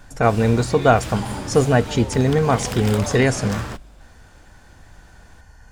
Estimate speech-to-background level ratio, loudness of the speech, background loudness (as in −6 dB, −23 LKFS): 11.0 dB, −19.0 LKFS, −30.0 LKFS